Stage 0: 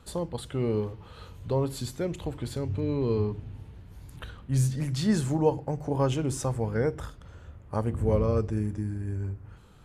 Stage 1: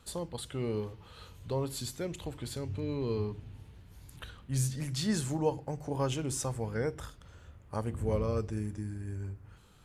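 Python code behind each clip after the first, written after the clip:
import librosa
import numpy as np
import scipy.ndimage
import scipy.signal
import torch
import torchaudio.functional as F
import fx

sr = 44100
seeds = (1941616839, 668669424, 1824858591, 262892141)

y = fx.high_shelf(x, sr, hz=2000.0, db=8.0)
y = y * 10.0 ** (-6.5 / 20.0)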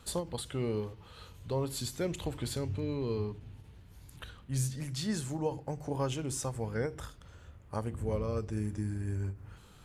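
y = fx.rider(x, sr, range_db=4, speed_s=0.5)
y = fx.end_taper(y, sr, db_per_s=200.0)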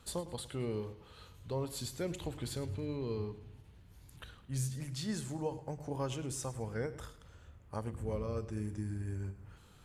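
y = fx.echo_feedback(x, sr, ms=107, feedback_pct=40, wet_db=-16.0)
y = y * 10.0 ** (-4.0 / 20.0)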